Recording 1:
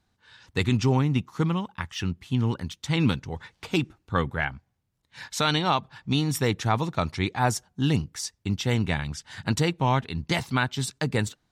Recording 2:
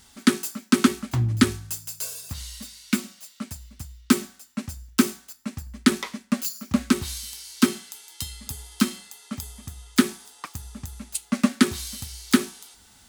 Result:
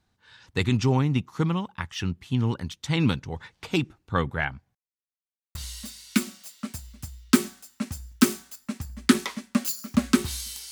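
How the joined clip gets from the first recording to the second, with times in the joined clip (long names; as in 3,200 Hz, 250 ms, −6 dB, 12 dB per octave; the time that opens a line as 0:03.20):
recording 1
0:04.75–0:05.55: silence
0:05.55: continue with recording 2 from 0:02.32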